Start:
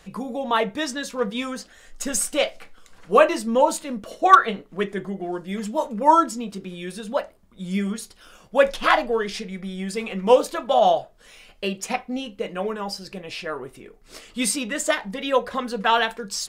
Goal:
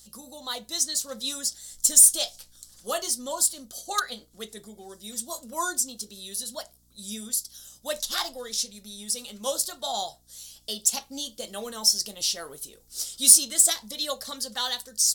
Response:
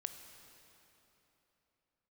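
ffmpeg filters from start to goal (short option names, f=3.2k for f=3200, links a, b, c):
-af "dynaudnorm=f=380:g=7:m=10.5dB,asetrate=48000,aresample=44100,aexciter=amount=9.8:drive=8.7:freq=3.7k,aeval=exprs='val(0)+0.00447*(sin(2*PI*60*n/s)+sin(2*PI*2*60*n/s)/2+sin(2*PI*3*60*n/s)/3+sin(2*PI*4*60*n/s)/4+sin(2*PI*5*60*n/s)/5)':c=same,volume=-17dB"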